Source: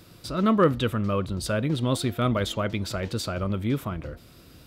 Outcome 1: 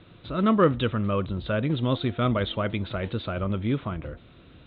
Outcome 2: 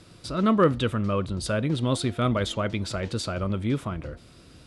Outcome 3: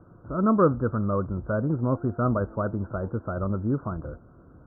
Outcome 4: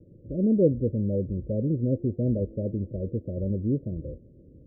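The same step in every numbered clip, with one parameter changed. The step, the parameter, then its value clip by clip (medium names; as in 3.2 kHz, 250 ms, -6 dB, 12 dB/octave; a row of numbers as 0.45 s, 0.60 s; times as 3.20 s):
steep low-pass, frequency: 3.9 kHz, 11 kHz, 1.5 kHz, 580 Hz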